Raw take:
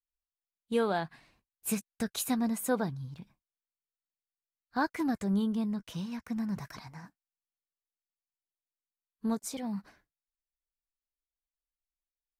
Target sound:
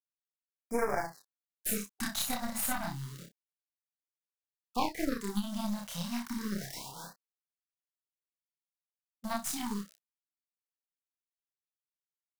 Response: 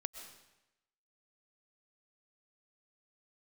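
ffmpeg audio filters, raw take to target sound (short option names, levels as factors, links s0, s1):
-filter_complex "[0:a]firequalizer=gain_entry='entry(910,0);entry(8500,-8);entry(14000,-4)':delay=0.05:min_phase=1,acrossover=split=3000[s0][s1];[s1]alimiter=level_in=3.76:limit=0.0631:level=0:latency=1:release=340,volume=0.266[s2];[s0][s2]amix=inputs=2:normalize=0,aeval=exprs='val(0)*gte(abs(val(0)),0.00398)':c=same,bass=f=250:g=-10,treble=f=4000:g=10,bandreject=f=2500:w=13,asplit=2[s3][s4];[s4]adelay=29,volume=0.266[s5];[s3][s5]amix=inputs=2:normalize=0,aecho=1:1:29|59:0.668|0.562,aeval=exprs='0.211*(cos(1*acos(clip(val(0)/0.211,-1,1)))-cos(1*PI/2))+0.075*(cos(2*acos(clip(val(0)/0.211,-1,1)))-cos(2*PI/2))+0.075*(cos(4*acos(clip(val(0)/0.211,-1,1)))-cos(4*PI/2))+0.0133*(cos(7*acos(clip(val(0)/0.211,-1,1)))-cos(7*PI/2))':c=same,acompressor=threshold=0.0224:ratio=4,afftfilt=real='re*(1-between(b*sr/1024,340*pow(3500/340,0.5+0.5*sin(2*PI*0.3*pts/sr))/1.41,340*pow(3500/340,0.5+0.5*sin(2*PI*0.3*pts/sr))*1.41))':imag='im*(1-between(b*sr/1024,340*pow(3500/340,0.5+0.5*sin(2*PI*0.3*pts/sr))/1.41,340*pow(3500/340,0.5+0.5*sin(2*PI*0.3*pts/sr))*1.41))':win_size=1024:overlap=0.75,volume=2"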